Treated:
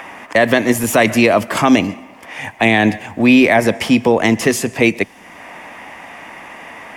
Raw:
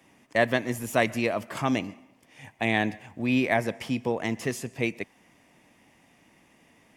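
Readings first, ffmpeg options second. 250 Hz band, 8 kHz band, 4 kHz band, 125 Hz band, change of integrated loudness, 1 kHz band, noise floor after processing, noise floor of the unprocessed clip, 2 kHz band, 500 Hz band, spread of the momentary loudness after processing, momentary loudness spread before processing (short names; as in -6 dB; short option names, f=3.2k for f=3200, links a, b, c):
+15.0 dB, +16.0 dB, +14.0 dB, +10.0 dB, +13.5 dB, +12.5 dB, -41 dBFS, -61 dBFS, +13.0 dB, +13.5 dB, 22 LU, 7 LU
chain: -filter_complex "[0:a]equalizer=f=130:w=7.5:g=-13.5,acrossover=split=170|650|2200[a][b][c][d];[c]acompressor=mode=upward:threshold=-38dB:ratio=2.5[e];[a][b][e][d]amix=inputs=4:normalize=0,alimiter=level_in=17.5dB:limit=-1dB:release=50:level=0:latency=1,volume=-1dB"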